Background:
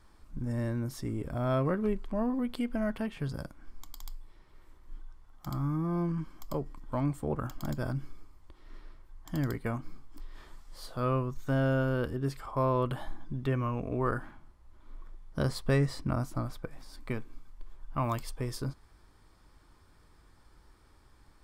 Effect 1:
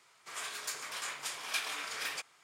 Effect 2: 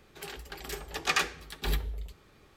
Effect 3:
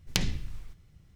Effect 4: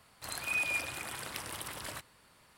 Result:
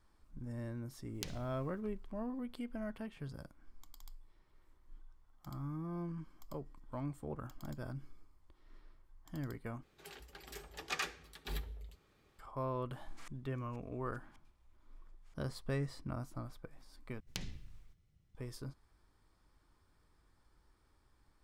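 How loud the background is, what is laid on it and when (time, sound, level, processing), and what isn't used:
background -10.5 dB
1.07 add 3 -18 dB + high shelf 7900 Hz +10 dB
9.83 replace with 2 -11 dB
12.91 add 1 -9.5 dB + flipped gate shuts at -32 dBFS, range -40 dB
17.2 replace with 3 -15 dB
not used: 4

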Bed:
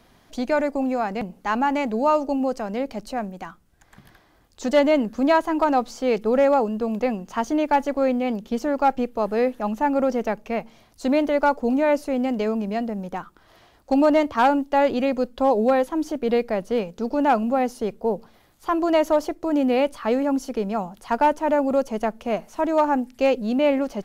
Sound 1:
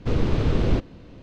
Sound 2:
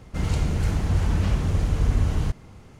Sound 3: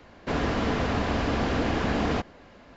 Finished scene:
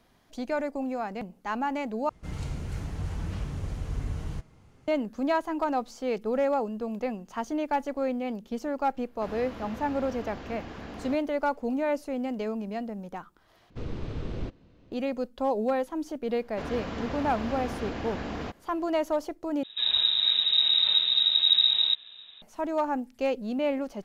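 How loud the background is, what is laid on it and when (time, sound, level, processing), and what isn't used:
bed -8 dB
2.09 replace with 2 -6 dB + flange 0.88 Hz, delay 5.9 ms, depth 2.1 ms, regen +77%
8.94 add 3 -15 dB
13.7 replace with 1 -13 dB
16.3 add 3 -9 dB
19.63 replace with 2 -3.5 dB + inverted band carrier 3800 Hz

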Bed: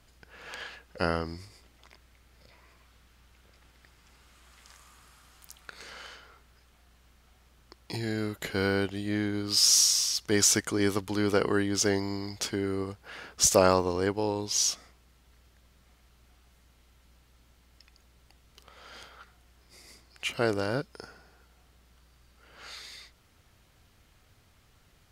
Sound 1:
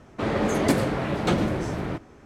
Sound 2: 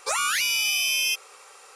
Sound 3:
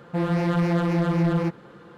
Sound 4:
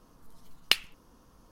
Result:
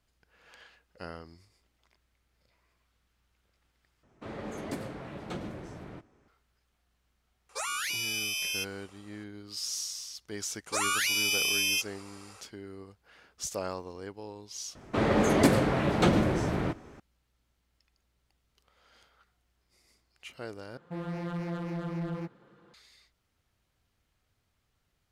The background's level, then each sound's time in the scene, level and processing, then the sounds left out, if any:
bed -14 dB
4.03 replace with 1 -15.5 dB
7.49 add 2 -9 dB + mismatched tape noise reduction decoder only
10.66 add 2 -4 dB
14.75 add 1 -0.5 dB
20.77 replace with 3 -13 dB
not used: 4

